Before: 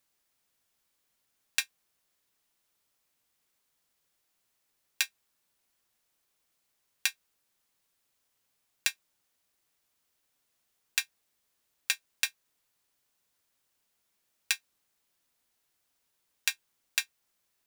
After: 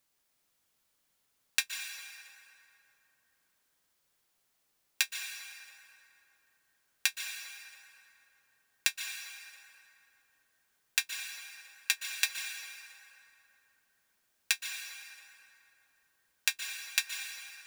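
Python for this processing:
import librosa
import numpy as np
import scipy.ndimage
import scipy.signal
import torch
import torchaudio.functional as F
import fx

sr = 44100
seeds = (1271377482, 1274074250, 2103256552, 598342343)

y = fx.rev_plate(x, sr, seeds[0], rt60_s=3.2, hf_ratio=0.55, predelay_ms=110, drr_db=3.5)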